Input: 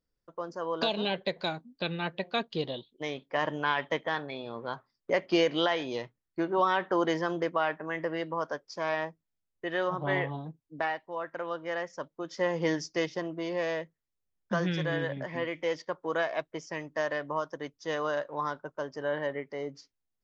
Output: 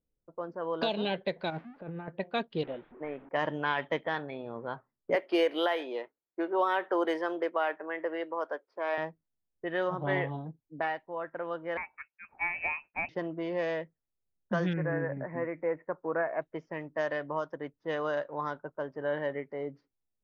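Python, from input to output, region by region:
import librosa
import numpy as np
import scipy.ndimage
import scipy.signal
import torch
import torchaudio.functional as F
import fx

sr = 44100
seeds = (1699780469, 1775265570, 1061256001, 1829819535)

y = fx.chain(x, sr, fx.crossing_spikes(level_db=-29.5),
    fx.lowpass(hz=1900.0, slope=12),
    fx.over_compress(threshold_db=-39.0, ratio=-1.0), at=(1.5, 2.08))
y = fx.chain(y, sr, fx.delta_mod(bps=32000, step_db=-43.0),
    fx.lowpass(hz=2500.0, slope=24),
    fx.peak_eq(hz=100.0, db=-12.0, octaves=1.3), at=(2.63, 3.29))
y = fx.chain(y, sr, fx.highpass(hz=320.0, slope=24),
    fx.resample_linear(factor=3), at=(5.15, 8.98))
y = fx.chain(y, sr, fx.low_shelf(hz=330.0, db=-7.0),
    fx.freq_invert(carrier_hz=2800), at=(11.77, 13.09))
y = fx.chain(y, sr, fx.lowpass(hz=1900.0, slope=24),
    fx.resample_bad(factor=8, down='none', up='filtered'), at=(14.73, 16.42))
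y = fx.lowpass(y, sr, hz=2800.0, slope=6)
y = fx.env_lowpass(y, sr, base_hz=750.0, full_db=-24.5)
y = fx.peak_eq(y, sr, hz=1100.0, db=-3.5, octaves=0.3)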